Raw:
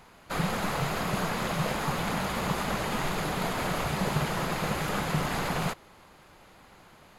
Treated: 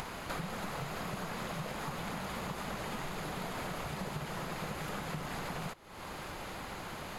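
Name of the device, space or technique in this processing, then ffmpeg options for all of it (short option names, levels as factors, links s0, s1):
upward and downward compression: -af "acompressor=mode=upward:threshold=0.0158:ratio=2.5,acompressor=threshold=0.01:ratio=8,volume=1.5"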